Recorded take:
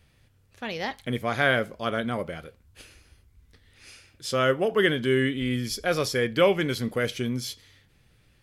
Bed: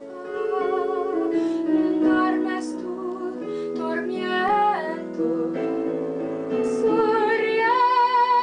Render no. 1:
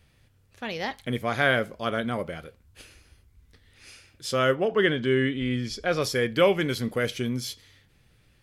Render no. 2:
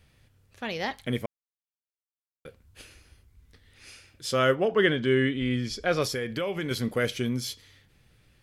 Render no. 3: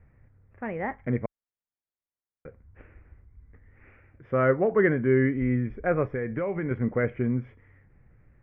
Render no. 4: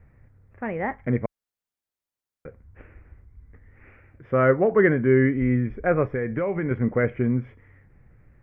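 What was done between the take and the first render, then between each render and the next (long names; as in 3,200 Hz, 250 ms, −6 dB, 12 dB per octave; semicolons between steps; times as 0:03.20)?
0:04.55–0:06.02: high-frequency loss of the air 76 metres
0:01.26–0:02.45: silence; 0:06.04–0:06.71: downward compressor 5 to 1, threshold −27 dBFS
elliptic low-pass filter 2,100 Hz, stop band 50 dB; spectral tilt −1.5 dB per octave
level +3.5 dB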